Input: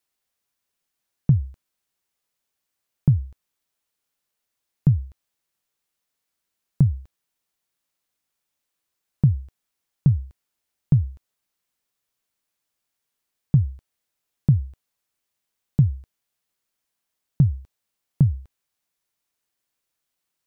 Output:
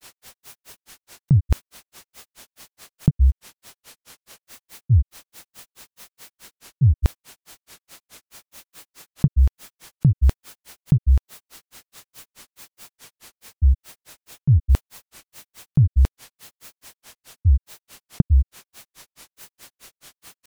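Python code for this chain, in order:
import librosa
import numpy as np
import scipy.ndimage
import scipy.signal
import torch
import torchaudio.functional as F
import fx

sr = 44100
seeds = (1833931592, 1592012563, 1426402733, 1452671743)

y = fx.granulator(x, sr, seeds[0], grain_ms=133.0, per_s=4.7, spray_ms=19.0, spread_st=0)
y = fx.env_flatten(y, sr, amount_pct=100)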